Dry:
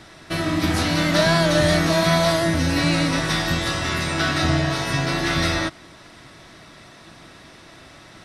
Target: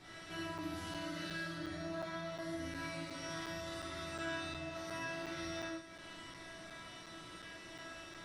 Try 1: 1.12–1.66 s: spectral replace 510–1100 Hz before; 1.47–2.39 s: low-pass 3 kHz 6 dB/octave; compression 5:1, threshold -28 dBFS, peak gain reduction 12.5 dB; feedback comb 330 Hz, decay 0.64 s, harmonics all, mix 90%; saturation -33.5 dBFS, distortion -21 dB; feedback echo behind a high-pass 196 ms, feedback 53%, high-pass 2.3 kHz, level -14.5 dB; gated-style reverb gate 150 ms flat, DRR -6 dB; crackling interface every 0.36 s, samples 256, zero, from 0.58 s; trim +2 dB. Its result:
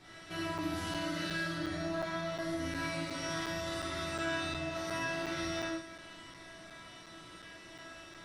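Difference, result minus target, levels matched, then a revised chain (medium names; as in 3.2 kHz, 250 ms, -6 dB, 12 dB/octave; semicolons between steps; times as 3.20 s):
compression: peak gain reduction -7 dB
1.12–1.66 s: spectral replace 510–1100 Hz before; 1.47–2.39 s: low-pass 3 kHz 6 dB/octave; compression 5:1, threshold -36.5 dBFS, peak gain reduction 19.5 dB; feedback comb 330 Hz, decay 0.64 s, harmonics all, mix 90%; saturation -33.5 dBFS, distortion -33 dB; feedback echo behind a high-pass 196 ms, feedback 53%, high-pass 2.3 kHz, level -14.5 dB; gated-style reverb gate 150 ms flat, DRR -6 dB; crackling interface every 0.36 s, samples 256, zero, from 0.58 s; trim +2 dB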